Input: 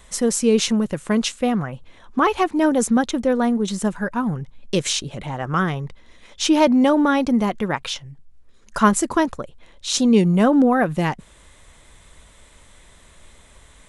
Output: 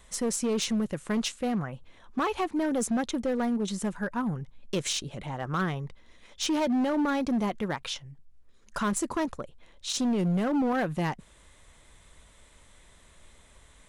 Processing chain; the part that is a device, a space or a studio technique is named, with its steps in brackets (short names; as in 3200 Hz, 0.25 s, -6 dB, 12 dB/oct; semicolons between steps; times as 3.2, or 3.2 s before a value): limiter into clipper (limiter -11 dBFS, peak gain reduction 7.5 dB; hard clip -16 dBFS, distortion -15 dB); gain -7 dB